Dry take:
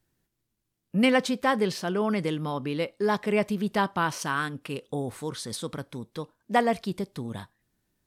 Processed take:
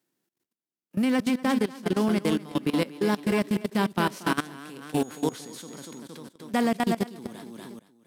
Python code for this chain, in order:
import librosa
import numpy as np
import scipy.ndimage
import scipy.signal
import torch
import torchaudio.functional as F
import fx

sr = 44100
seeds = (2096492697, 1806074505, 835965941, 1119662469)

p1 = fx.envelope_flatten(x, sr, power=0.6)
p2 = fx.quant_float(p1, sr, bits=2)
p3 = p1 + (p2 * 10.0 ** (-9.0 / 20.0))
p4 = scipy.signal.sosfilt(scipy.signal.butter(4, 150.0, 'highpass', fs=sr, output='sos'), p3)
p5 = fx.peak_eq(p4, sr, hz=290.0, db=8.5, octaves=1.5)
p6 = fx.echo_multitap(p5, sr, ms=(240, 243), db=(-5.5, -18.0))
p7 = fx.rider(p6, sr, range_db=3, speed_s=0.5)
p8 = p7 + fx.echo_single(p7, sr, ms=467, db=-12.5, dry=0)
p9 = fx.level_steps(p8, sr, step_db=19)
p10 = fx.dmg_tone(p9, sr, hz=6700.0, level_db=-47.0, at=(5.02, 5.98), fade=0.02)
y = p10 * 10.0 ** (-3.5 / 20.0)